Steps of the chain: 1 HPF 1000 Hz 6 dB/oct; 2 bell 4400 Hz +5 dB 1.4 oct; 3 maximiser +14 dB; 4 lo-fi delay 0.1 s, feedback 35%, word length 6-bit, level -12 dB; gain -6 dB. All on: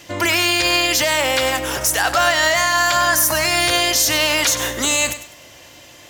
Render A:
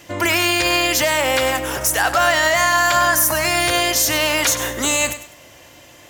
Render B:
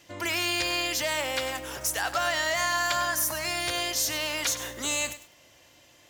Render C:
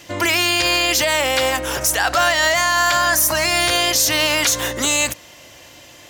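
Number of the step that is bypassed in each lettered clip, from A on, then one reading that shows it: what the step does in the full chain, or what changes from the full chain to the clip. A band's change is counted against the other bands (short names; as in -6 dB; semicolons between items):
2, 4 kHz band -3.5 dB; 3, crest factor change +3.5 dB; 4, crest factor change -2.0 dB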